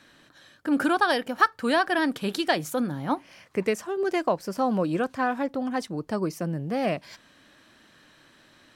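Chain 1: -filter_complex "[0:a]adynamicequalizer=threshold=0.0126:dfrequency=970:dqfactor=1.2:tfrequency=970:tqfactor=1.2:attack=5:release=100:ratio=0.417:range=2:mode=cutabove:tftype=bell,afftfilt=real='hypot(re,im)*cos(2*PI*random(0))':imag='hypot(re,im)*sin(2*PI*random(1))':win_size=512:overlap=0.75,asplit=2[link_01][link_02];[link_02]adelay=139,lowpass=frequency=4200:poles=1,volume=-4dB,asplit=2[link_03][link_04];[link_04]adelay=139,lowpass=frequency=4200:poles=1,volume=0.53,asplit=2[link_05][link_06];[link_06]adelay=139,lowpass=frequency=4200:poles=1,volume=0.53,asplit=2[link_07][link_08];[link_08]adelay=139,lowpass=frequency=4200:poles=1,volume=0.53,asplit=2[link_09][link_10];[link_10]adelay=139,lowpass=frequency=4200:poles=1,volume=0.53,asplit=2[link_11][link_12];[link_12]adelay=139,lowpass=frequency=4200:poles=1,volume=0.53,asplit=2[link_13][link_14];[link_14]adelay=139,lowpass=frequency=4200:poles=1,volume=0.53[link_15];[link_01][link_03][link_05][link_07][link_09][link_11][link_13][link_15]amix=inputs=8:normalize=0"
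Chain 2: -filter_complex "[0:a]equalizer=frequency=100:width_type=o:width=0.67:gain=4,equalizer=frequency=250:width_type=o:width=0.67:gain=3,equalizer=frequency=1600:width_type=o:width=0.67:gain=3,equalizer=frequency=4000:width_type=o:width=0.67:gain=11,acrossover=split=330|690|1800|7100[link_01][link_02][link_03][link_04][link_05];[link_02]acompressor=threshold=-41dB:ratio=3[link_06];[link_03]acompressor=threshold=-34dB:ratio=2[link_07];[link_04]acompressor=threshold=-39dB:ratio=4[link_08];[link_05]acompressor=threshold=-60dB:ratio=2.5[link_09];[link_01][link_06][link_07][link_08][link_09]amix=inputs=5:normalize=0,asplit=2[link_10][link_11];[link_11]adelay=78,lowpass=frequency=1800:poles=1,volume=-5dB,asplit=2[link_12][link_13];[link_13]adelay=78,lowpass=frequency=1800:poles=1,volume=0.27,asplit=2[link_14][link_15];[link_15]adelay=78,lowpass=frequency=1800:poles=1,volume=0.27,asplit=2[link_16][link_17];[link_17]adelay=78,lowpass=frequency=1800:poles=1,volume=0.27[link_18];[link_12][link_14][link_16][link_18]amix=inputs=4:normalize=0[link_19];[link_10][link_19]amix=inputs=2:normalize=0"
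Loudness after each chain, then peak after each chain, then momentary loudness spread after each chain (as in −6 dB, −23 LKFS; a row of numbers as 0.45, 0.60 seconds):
−31.5, −27.5 LKFS; −13.0, −13.0 dBFS; 7, 6 LU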